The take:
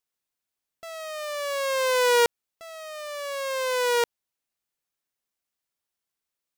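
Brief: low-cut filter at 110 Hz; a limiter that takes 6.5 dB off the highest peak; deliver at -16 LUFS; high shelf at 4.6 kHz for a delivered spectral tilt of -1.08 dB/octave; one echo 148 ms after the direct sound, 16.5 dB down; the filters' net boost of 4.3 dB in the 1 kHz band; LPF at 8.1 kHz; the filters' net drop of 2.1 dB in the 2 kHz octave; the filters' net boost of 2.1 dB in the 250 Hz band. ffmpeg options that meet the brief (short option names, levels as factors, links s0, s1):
-af "highpass=110,lowpass=8100,equalizer=f=250:t=o:g=3,equalizer=f=1000:t=o:g=5.5,equalizer=f=2000:t=o:g=-6.5,highshelf=f=4600:g=5.5,alimiter=limit=0.168:level=0:latency=1,aecho=1:1:148:0.15,volume=3.16"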